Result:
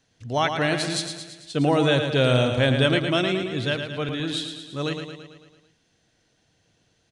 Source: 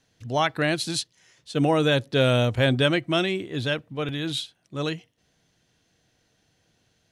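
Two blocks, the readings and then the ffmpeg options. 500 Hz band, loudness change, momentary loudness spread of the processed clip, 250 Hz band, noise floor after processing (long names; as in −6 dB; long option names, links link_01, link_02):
+1.0 dB, +1.0 dB, 13 LU, +1.5 dB, −67 dBFS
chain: -filter_complex "[0:a]asplit=2[link_01][link_02];[link_02]aecho=0:1:111|222|333|444|555|666|777:0.447|0.259|0.15|0.0872|0.0505|0.0293|0.017[link_03];[link_01][link_03]amix=inputs=2:normalize=0,aresample=22050,aresample=44100"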